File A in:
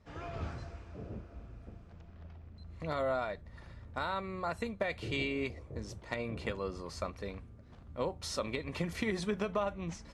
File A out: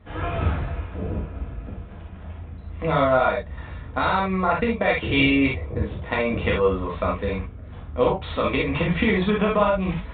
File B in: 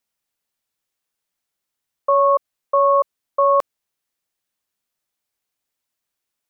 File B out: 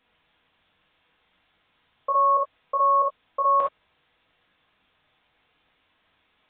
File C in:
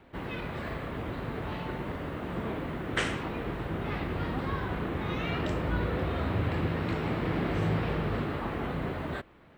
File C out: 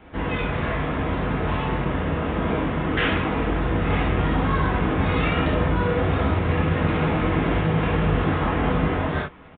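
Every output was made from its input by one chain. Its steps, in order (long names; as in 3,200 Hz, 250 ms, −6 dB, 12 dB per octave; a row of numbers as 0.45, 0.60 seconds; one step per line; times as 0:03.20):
in parallel at −2.5 dB: compressor whose output falls as the input rises −32 dBFS, ratio −0.5
on the sum: reverb whose tail is shaped and stops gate 90 ms flat, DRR −3.5 dB
downsampling to 8,000 Hz
loudness normalisation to −23 LKFS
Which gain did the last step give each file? +5.5, −8.5, +0.5 decibels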